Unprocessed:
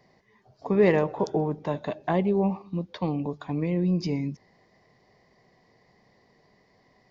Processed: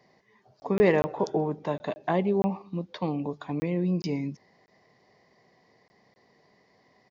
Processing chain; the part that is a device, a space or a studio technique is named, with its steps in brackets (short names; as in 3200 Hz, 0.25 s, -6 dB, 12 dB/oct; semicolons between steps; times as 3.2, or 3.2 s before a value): call with lost packets (HPF 160 Hz 6 dB/oct; downsampling 16000 Hz; packet loss packets of 20 ms random)